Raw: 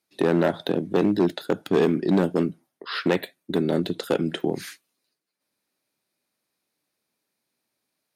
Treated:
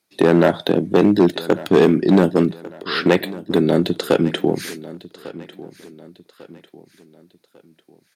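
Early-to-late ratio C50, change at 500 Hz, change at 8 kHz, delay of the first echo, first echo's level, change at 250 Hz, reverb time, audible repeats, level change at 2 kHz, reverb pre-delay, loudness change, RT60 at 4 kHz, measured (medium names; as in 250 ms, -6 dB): no reverb, +7.0 dB, +7.0 dB, 1148 ms, -18.0 dB, +7.0 dB, no reverb, 3, +7.0 dB, no reverb, +7.0 dB, no reverb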